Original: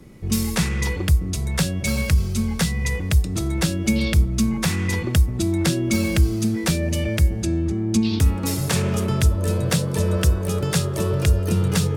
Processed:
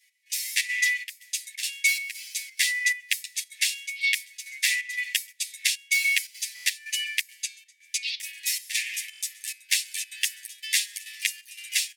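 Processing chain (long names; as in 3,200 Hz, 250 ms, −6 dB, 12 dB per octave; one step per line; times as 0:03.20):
automatic gain control gain up to 8 dB
dynamic equaliser 2,300 Hz, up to +5 dB, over −36 dBFS, Q 1.9
on a send: delay with a high-pass on its return 132 ms, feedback 68%, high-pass 4,800 Hz, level −24 dB
on the sum: gate pattern "x..xxxx.xxx" 175 BPM −12 dB
Butterworth high-pass 1,800 Hz 96 dB per octave
buffer that repeats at 0:06.54/0:09.11, samples 1,024, times 4
barber-pole flanger 9 ms −0.5 Hz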